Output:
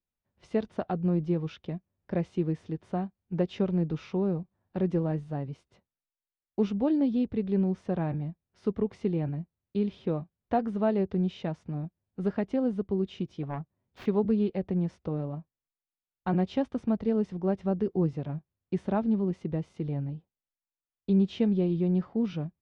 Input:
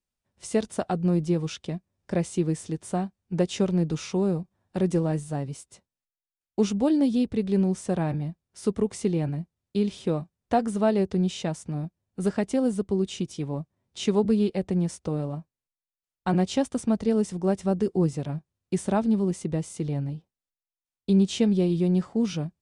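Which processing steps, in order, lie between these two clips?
0:13.43–0:14.06: phase distortion by the signal itself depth 0.83 ms
high-frequency loss of the air 300 metres
level −3 dB

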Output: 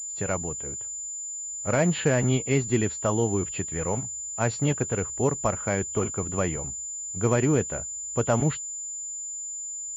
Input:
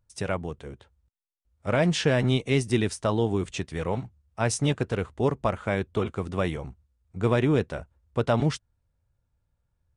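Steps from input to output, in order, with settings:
hearing-aid frequency compression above 2,700 Hz 1.5 to 1
switching amplifier with a slow clock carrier 7,100 Hz

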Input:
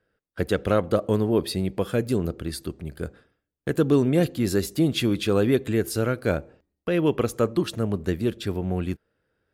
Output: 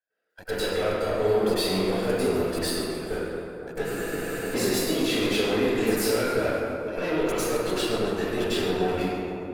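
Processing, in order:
high-pass filter 500 Hz 12 dB per octave
parametric band 1,100 Hz −3.5 dB 0.43 octaves
output level in coarse steps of 19 dB
echo with a time of its own for lows and highs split 1,300 Hz, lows 486 ms, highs 136 ms, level −13 dB
tube saturation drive 37 dB, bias 0.45
convolution reverb RT60 1.9 s, pre-delay 94 ms, DRR −16.5 dB
frozen spectrum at 0:03.88, 0.67 s

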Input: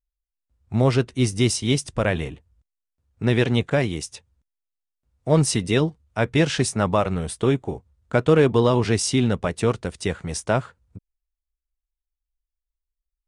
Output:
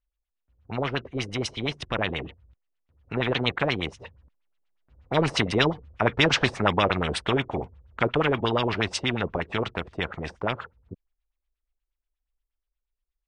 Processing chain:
source passing by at 0:06.00, 11 m/s, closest 13 metres
auto-filter low-pass sine 8.4 Hz 390–3,500 Hz
every bin compressed towards the loudest bin 2 to 1

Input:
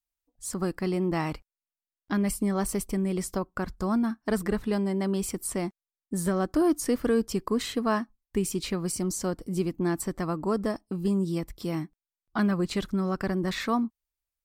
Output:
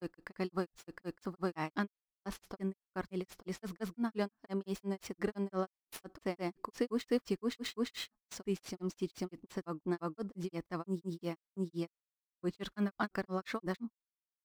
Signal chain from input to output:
running median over 5 samples
granular cloud 155 ms, grains 5.8 per second, spray 883 ms
noise gate −52 dBFS, range −26 dB
low-shelf EQ 170 Hz −10.5 dB
level −2.5 dB

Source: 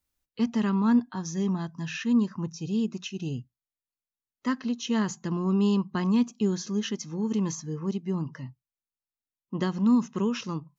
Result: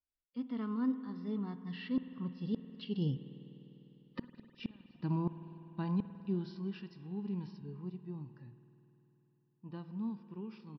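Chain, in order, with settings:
source passing by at 0:03.77, 26 m/s, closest 7.2 metres
harmonic and percussive parts rebalanced percussive −9 dB
downsampling to 11,025 Hz
gate with flip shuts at −34 dBFS, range −35 dB
convolution reverb RT60 3.6 s, pre-delay 50 ms, DRR 11.5 dB
level +9.5 dB

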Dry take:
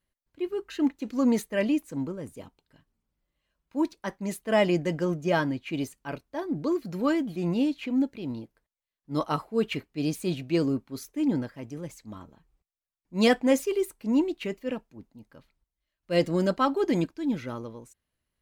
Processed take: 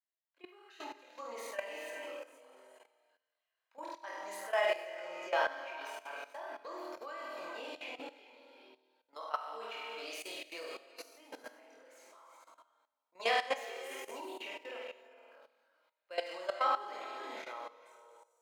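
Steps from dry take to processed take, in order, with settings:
high-pass filter 630 Hz 24 dB per octave
parametric band 12,000 Hz −7 dB 2.2 octaves
on a send: flutter between parallel walls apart 8.5 metres, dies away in 0.93 s
on the sum: reverb whose tail is shaped and stops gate 460 ms rising, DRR 6.5 dB
multi-voice chorus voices 4, 0.27 Hz, delay 24 ms, depth 2.5 ms
output level in coarse steps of 15 dB
level +1 dB

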